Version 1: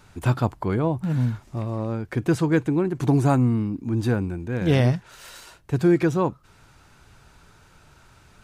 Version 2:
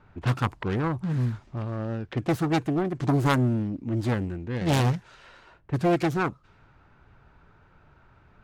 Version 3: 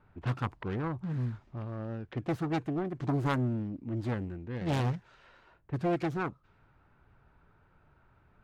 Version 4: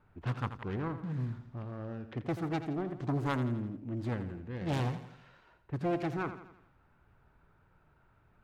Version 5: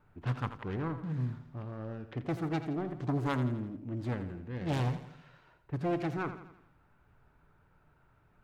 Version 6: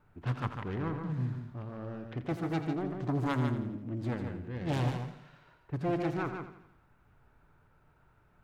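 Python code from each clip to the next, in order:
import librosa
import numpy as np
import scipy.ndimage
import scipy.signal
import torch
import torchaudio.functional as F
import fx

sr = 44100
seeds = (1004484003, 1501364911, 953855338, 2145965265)

y1 = fx.self_delay(x, sr, depth_ms=0.7)
y1 = fx.env_lowpass(y1, sr, base_hz=1800.0, full_db=-18.5)
y1 = y1 * librosa.db_to_amplitude(-3.0)
y2 = fx.high_shelf(y1, sr, hz=5200.0, db=-10.5)
y2 = y2 * librosa.db_to_amplitude(-7.0)
y3 = fx.echo_feedback(y2, sr, ms=84, feedback_pct=50, wet_db=-11.0)
y3 = y3 * librosa.db_to_amplitude(-2.5)
y4 = fx.room_shoebox(y3, sr, seeds[0], volume_m3=970.0, walls='furnished', distance_m=0.38)
y5 = y4 + 10.0 ** (-6.5 / 20.0) * np.pad(y4, (int(147 * sr / 1000.0), 0))[:len(y4)]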